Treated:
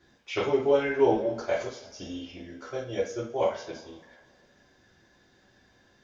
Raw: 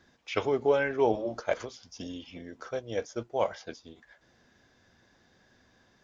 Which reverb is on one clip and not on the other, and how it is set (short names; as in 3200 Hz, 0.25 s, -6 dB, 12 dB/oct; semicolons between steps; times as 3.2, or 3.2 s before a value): two-slope reverb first 0.38 s, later 2.1 s, from -21 dB, DRR -6.5 dB; gain -5.5 dB